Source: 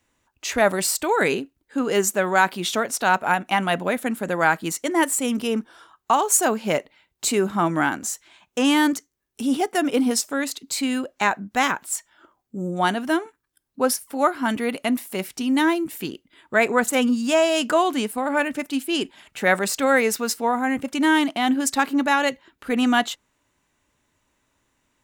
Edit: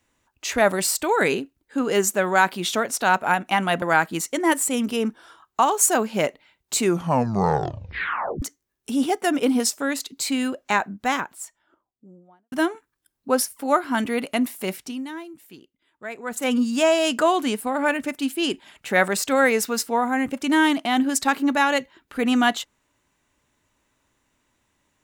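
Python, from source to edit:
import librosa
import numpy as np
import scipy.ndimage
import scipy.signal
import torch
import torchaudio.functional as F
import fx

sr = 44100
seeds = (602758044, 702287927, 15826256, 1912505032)

y = fx.studio_fade_out(x, sr, start_s=11.09, length_s=1.94)
y = fx.edit(y, sr, fx.cut(start_s=3.82, length_s=0.51),
    fx.tape_stop(start_s=7.29, length_s=1.64),
    fx.fade_down_up(start_s=15.21, length_s=1.9, db=-15.5, fade_s=0.37), tone=tone)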